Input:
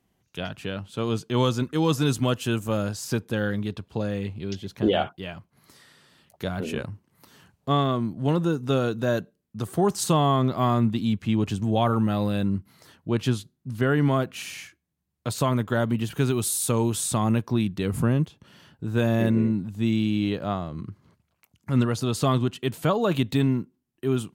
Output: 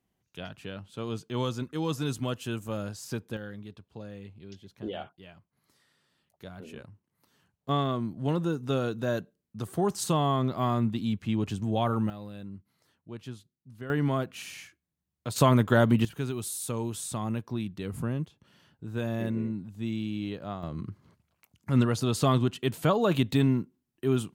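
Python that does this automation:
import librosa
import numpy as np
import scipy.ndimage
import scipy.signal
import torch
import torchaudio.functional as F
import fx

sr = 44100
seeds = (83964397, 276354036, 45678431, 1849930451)

y = fx.gain(x, sr, db=fx.steps((0.0, -8.0), (3.37, -14.5), (7.69, -5.0), (12.1, -17.0), (13.9, -5.5), (15.36, 2.5), (16.05, -9.0), (20.63, -1.5)))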